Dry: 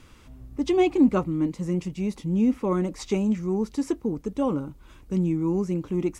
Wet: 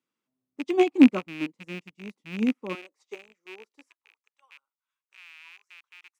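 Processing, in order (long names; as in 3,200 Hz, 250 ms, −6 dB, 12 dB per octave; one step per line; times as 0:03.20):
loose part that buzzes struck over −28 dBFS, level −17 dBFS
high-pass filter 180 Hz 24 dB per octave, from 0:02.75 390 Hz, from 0:03.88 1,000 Hz
expander for the loud parts 2.5 to 1, over −39 dBFS
level +5 dB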